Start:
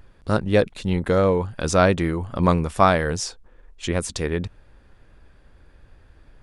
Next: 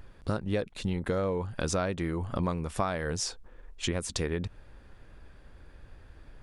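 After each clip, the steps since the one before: compression 6:1, threshold -27 dBFS, peak gain reduction 16 dB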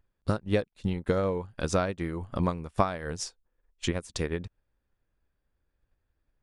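upward expansion 2.5:1, over -47 dBFS; trim +6.5 dB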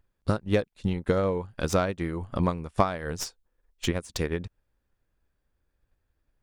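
tracing distortion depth 0.034 ms; trim +2 dB

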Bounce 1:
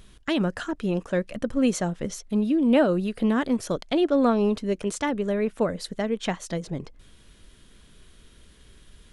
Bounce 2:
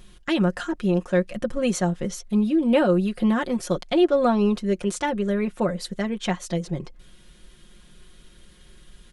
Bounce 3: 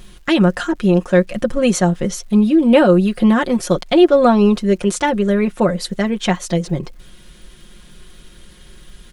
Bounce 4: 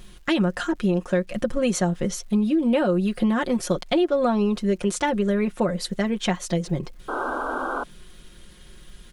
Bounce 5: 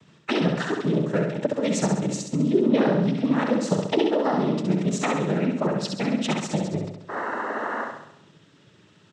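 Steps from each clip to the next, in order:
comb 5.6 ms, depth 70%
crackle 350 per s -53 dBFS; trim +8 dB
compression, threshold -13 dBFS, peak gain reduction 8 dB; painted sound noise, 7.08–7.84 s, 240–1600 Hz -23 dBFS; trim -4.5 dB
noise-vocoded speech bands 12; feedback delay 67 ms, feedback 55%, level -4 dB; tape noise reduction on one side only decoder only; trim -2 dB

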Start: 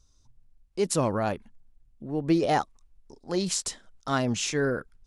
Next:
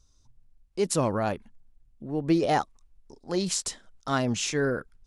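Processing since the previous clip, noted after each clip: no audible change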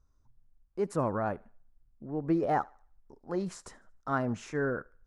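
resonant high shelf 2.2 kHz -13.5 dB, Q 1.5; thinning echo 76 ms, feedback 36%, high-pass 380 Hz, level -24 dB; trim -5 dB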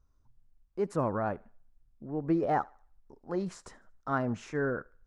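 treble shelf 8.3 kHz -8.5 dB

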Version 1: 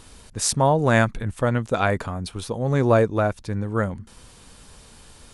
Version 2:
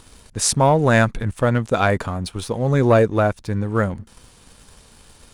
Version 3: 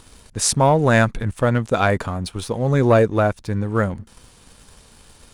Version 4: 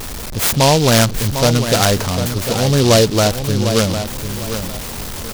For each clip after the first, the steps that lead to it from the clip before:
waveshaping leveller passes 1
no audible change
jump at every zero crossing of -23.5 dBFS; feedback delay 751 ms, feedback 28%, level -9 dB; delay time shaken by noise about 4.1 kHz, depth 0.12 ms; trim +2 dB

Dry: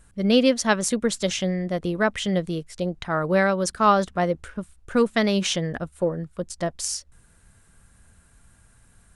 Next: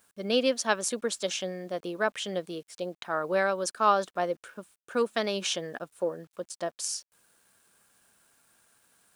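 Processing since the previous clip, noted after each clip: high-pass 350 Hz 12 dB/octave; band-stop 2 kHz, Q 8.1; bit crusher 10-bit; trim -4.5 dB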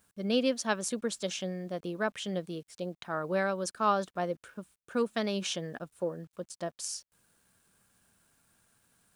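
tone controls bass +11 dB, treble 0 dB; trim -4.5 dB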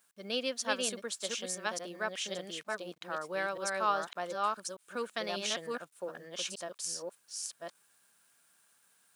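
chunks repeated in reverse 596 ms, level -2 dB; high-pass 1 kHz 6 dB/octave

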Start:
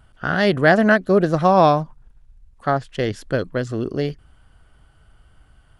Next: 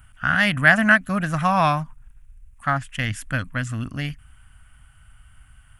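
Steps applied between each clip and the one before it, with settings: FFT filter 110 Hz 0 dB, 180 Hz -6 dB, 270 Hz -6 dB, 390 Hz -29 dB, 640 Hz -11 dB, 940 Hz -5 dB, 1.3 kHz 0 dB, 2.6 kHz +5 dB, 4.3 kHz -10 dB, 8.6 kHz +8 dB; trim +2.5 dB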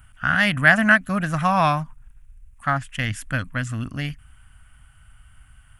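no audible change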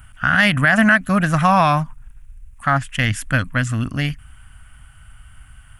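peak limiter -10.5 dBFS, peak gain reduction 9 dB; trim +6.5 dB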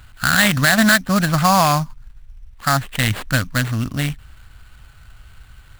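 sample-rate reducer 5.8 kHz, jitter 20%

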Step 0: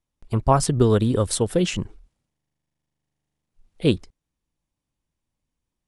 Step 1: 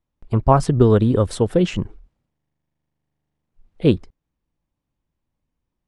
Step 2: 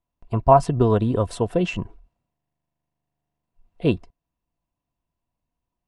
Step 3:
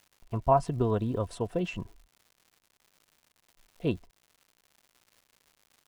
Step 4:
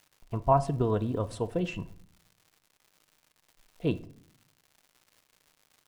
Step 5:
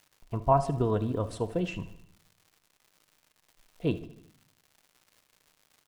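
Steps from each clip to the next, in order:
low-pass 1.7 kHz 6 dB/octave; trim +4 dB
small resonant body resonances 700/980/2700 Hz, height 13 dB, ringing for 55 ms; trim -5 dB
crackle 230 per s -39 dBFS; trim -9 dB
simulated room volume 740 m³, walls furnished, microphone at 0.52 m
feedback delay 76 ms, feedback 54%, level -16.5 dB

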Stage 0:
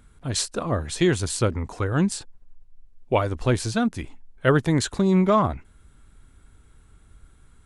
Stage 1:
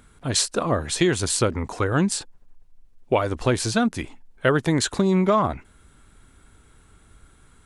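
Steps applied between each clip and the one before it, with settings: bass shelf 140 Hz -8.5 dB; compression 3:1, threshold -22 dBFS, peak gain reduction 6.5 dB; trim +5.5 dB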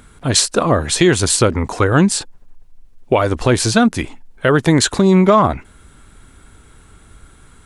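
loudness maximiser +9.5 dB; trim -1 dB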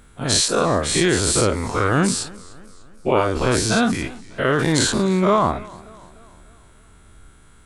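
every event in the spectrogram widened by 120 ms; modulated delay 297 ms, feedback 50%, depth 84 cents, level -22 dB; trim -9.5 dB

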